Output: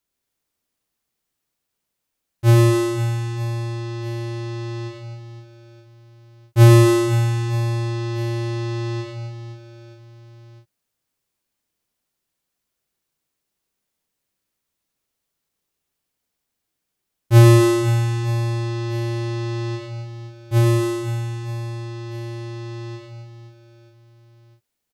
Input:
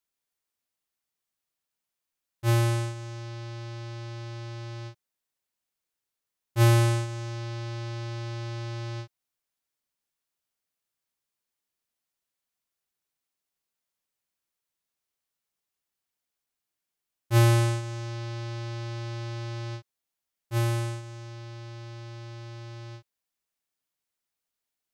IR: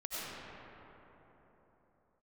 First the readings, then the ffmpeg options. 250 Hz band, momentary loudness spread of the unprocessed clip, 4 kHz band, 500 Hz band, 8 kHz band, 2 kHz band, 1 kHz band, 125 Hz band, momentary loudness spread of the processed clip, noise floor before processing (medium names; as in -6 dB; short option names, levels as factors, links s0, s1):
+14.0 dB, 20 LU, +6.0 dB, +12.0 dB, +6.5 dB, +6.5 dB, +7.0 dB, +9.5 dB, 20 LU, under -85 dBFS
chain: -filter_complex "[0:a]aecho=1:1:100|260|516|925.6|1581:0.631|0.398|0.251|0.158|0.1,acrossover=split=510[s0][s1];[s0]acontrast=56[s2];[s2][s1]amix=inputs=2:normalize=0,volume=1.68"